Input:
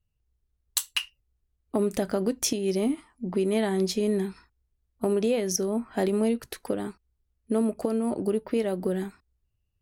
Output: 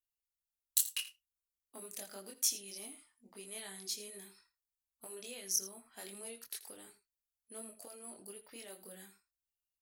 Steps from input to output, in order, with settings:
first-order pre-emphasis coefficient 0.97
multi-voice chorus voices 4, 0.57 Hz, delay 23 ms, depth 3.1 ms
single-tap delay 82 ms −15 dB

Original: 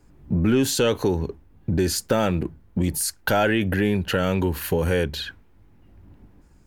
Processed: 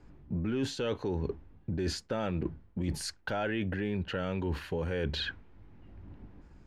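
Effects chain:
low-pass filter 4,000 Hz 12 dB per octave
reversed playback
downward compressor 6 to 1, threshold −30 dBFS, peak gain reduction 13.5 dB
reversed playback

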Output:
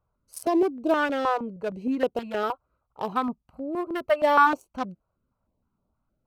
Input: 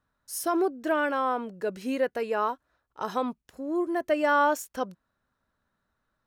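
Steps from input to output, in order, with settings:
adaptive Wiener filter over 25 samples
0:02.43–0:04.47: thirty-one-band graphic EQ 315 Hz −7 dB, 800 Hz +3 dB, 1,250 Hz +7 dB, 6,300 Hz −7 dB, 12,500 Hz +5 dB
notch on a step sequencer 6.4 Hz 250–1,800 Hz
level +5.5 dB

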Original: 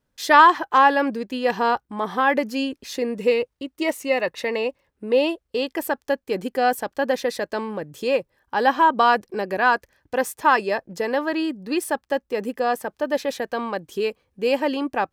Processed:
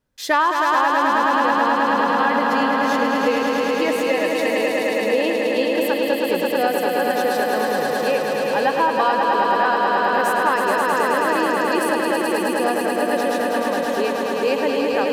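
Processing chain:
on a send: echo that builds up and dies away 107 ms, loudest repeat 5, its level −5 dB
on the sum: downward compressor, threshold −14 dBFS, peak gain reduction 7.5 dB

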